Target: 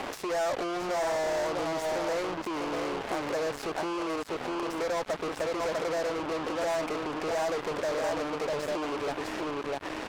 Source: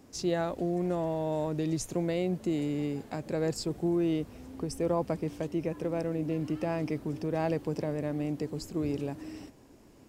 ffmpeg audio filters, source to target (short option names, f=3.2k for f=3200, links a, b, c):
-filter_complex "[0:a]asplit=2[a][b];[b]aecho=0:1:649:0.447[c];[a][c]amix=inputs=2:normalize=0,asplit=2[d][e];[e]highpass=f=720:p=1,volume=31dB,asoftclip=type=tanh:threshold=-15.5dB[f];[d][f]amix=inputs=2:normalize=0,lowpass=f=3k:p=1,volume=-6dB,acompressor=threshold=-36dB:ratio=6,acrossover=split=450 2100:gain=0.224 1 0.178[g][h][i];[g][h][i]amix=inputs=3:normalize=0,acrusher=bits=6:mix=0:aa=0.5,volume=9dB"